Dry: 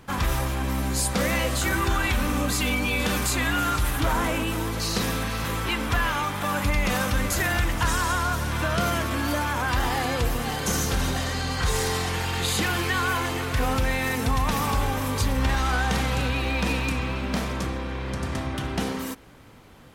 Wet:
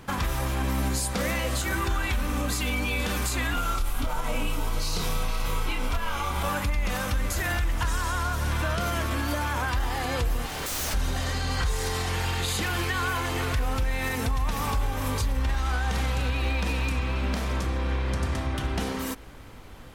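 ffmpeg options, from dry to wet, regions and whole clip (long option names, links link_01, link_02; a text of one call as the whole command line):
ffmpeg -i in.wav -filter_complex "[0:a]asettb=1/sr,asplit=3[link_01][link_02][link_03];[link_01]atrim=end=3.544[link_04];[link_02]atrim=start=3.54:end=6.49,asetpts=PTS-STARTPTS,afade=type=in:duration=0.004:curve=qsin,afade=type=out:start_time=2.946:duration=0.004:curve=qsin,bandreject=frequency=1800:width=5.6,afreqshift=-27,asplit=2[link_05][link_06];[link_06]adelay=28,volume=-3dB[link_07];[link_05][link_07]amix=inputs=2:normalize=0,atrim=end_sample=130095[link_08];[link_03]atrim=start=6.486[link_09];[link_04][link_08]acrossfade=duration=0.004:curve1=hsin:curve2=qsin[link_10];[link_10][link_09]acrossfade=duration=0.004:curve1=qsin:curve2=hsin,asettb=1/sr,asplit=3[link_11][link_12][link_13];[link_11]atrim=end=10.464[link_14];[link_12]atrim=start=10.46:end=10.94,asetpts=PTS-STARTPTS,afade=type=in:duration=0.004:curve=qsin,afade=type=out:start_time=0.476:duration=0.004:curve=qsin,highpass=frequency=64:width=0.5412,highpass=frequency=64:width=1.3066,aeval=exprs='0.0398*(abs(mod(val(0)/0.0398+3,4)-2)-1)':channel_layout=same[link_15];[link_13]atrim=start=10.936[link_16];[link_14][link_15]acrossfade=duration=0.004:curve1=hsin:curve2=qsin[link_17];[link_17][link_16]acrossfade=duration=0.004:curve1=qsin:curve2=hsin,asubboost=boost=3:cutoff=72,alimiter=limit=-21dB:level=0:latency=1:release=435,volume=3dB" out.wav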